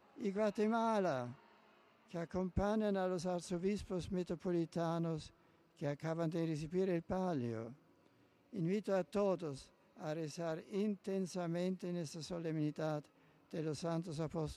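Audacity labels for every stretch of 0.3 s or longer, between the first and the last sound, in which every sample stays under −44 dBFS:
1.320000	2.140000	silence
5.270000	5.820000	silence
7.690000	8.540000	silence
9.590000	10.010000	silence
13.000000	13.540000	silence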